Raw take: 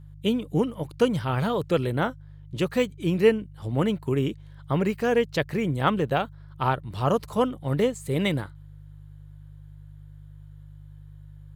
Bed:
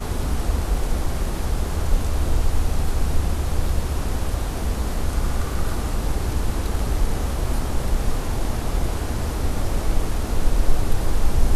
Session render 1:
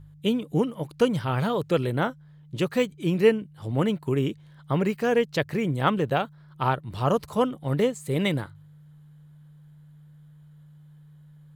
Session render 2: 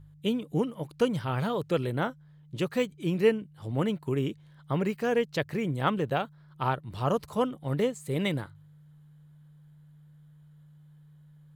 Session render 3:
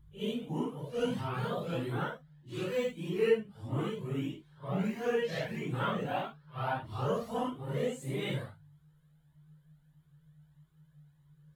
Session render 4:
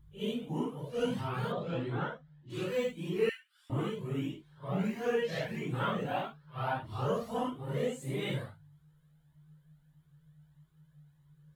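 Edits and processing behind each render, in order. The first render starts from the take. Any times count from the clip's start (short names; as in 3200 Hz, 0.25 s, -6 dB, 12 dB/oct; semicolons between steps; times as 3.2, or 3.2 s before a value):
de-hum 50 Hz, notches 2
gain -4 dB
phase scrambler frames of 0.2 s; cascading flanger rising 1.6 Hz
1.52–2.5 air absorption 120 m; 3.29–3.7 elliptic high-pass 1500 Hz, stop band 80 dB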